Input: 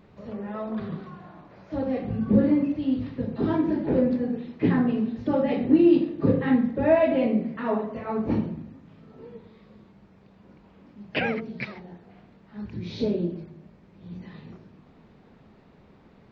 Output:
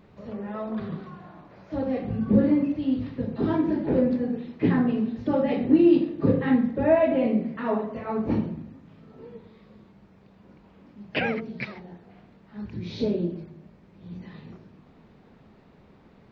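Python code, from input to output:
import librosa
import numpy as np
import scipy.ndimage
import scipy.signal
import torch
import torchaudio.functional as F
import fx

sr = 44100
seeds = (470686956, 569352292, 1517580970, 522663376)

y = fx.lowpass(x, sr, hz=2800.0, slope=6, at=(6.83, 7.25))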